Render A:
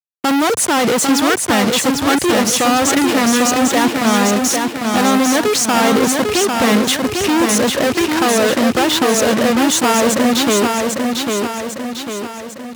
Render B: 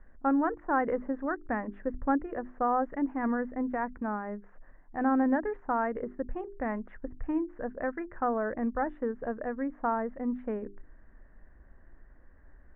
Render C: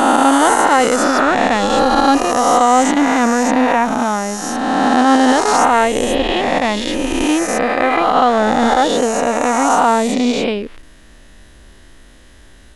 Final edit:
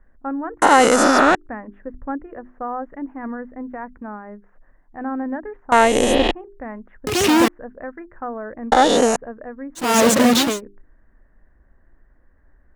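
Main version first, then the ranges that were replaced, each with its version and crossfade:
B
0.62–1.35 from C
5.72–6.31 from C
7.07–7.48 from A
8.72–9.16 from C
9.87–10.49 from A, crossfade 0.24 s

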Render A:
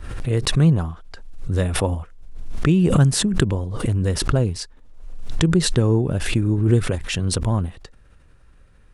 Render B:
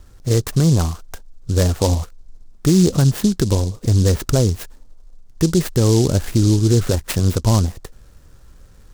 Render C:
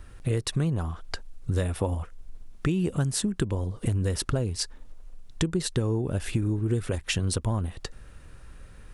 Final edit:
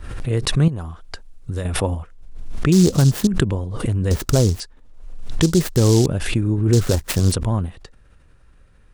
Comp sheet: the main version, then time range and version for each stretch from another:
A
0.68–1.65 from C
2.72–3.27 from B
4.11–4.6 from B
5.42–6.06 from B
6.73–7.32 from B

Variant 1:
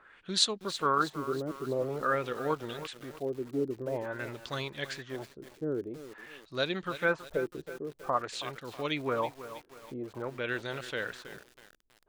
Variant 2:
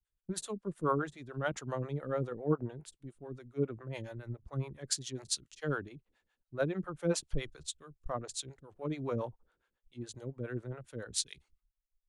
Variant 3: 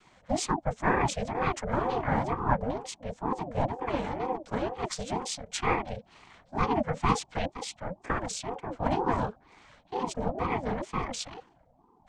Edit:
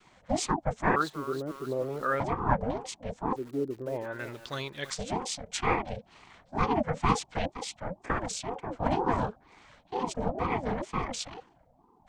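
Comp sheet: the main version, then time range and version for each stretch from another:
3
0.96–2.2 from 1
3.36–4.9 from 1
not used: 2

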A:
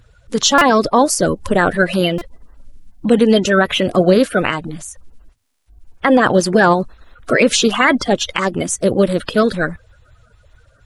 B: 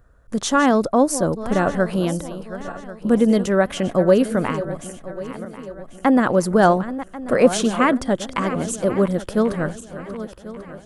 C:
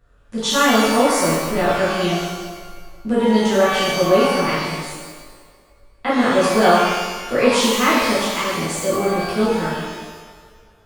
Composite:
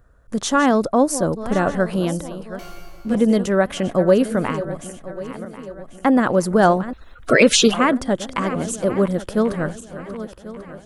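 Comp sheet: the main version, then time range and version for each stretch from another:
B
2.59–3.15 from C
6.93–7.74 from A

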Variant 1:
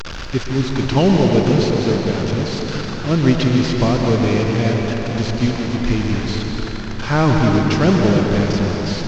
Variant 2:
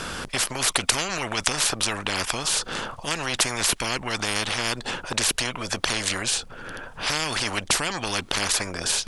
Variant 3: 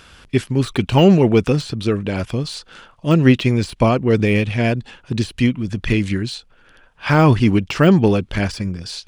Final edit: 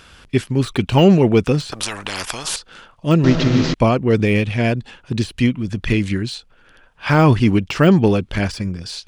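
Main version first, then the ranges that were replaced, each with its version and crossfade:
3
1.72–2.56 from 2
3.24–3.74 from 1

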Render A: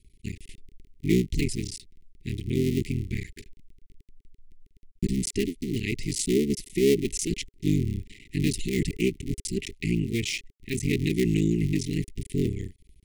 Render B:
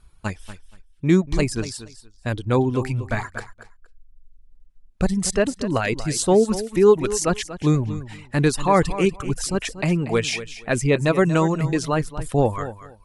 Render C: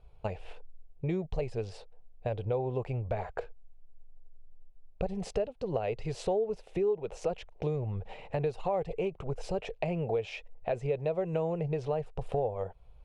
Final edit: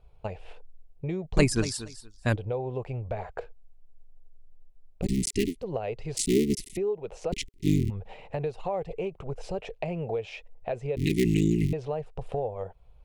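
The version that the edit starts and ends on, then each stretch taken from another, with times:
C
1.37–2.36 from B
5.03–5.59 from A, crossfade 0.10 s
6.17–6.77 from A
7.32–7.9 from A
10.97–11.73 from A

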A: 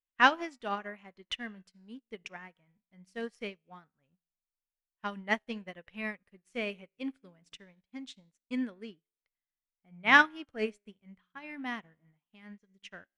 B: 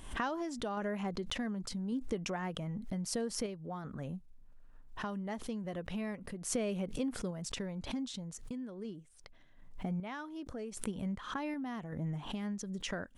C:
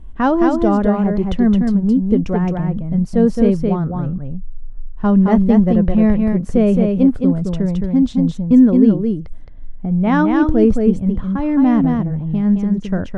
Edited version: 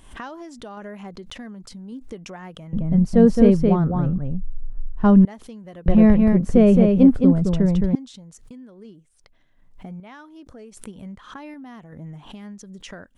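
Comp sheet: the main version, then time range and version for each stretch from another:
B
2.73–5.25 from C
5.86–7.95 from C
not used: A

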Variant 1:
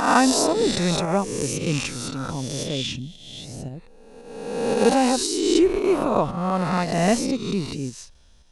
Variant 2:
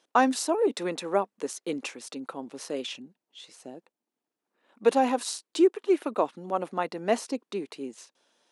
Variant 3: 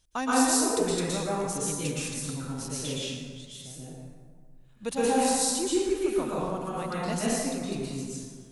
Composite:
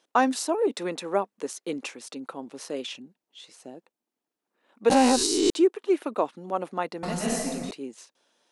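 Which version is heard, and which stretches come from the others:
2
4.9–5.5 from 1
7.03–7.71 from 3

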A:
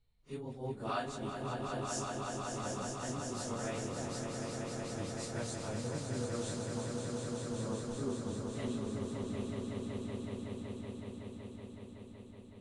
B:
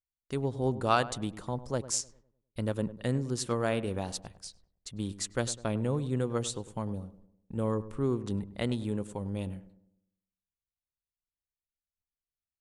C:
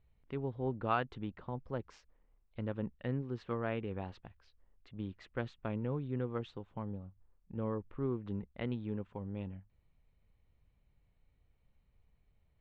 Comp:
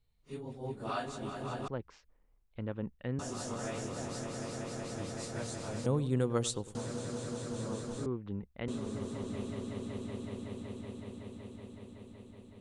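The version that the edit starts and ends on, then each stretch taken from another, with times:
A
1.68–3.19 from C
5.86–6.75 from B
8.06–8.68 from C

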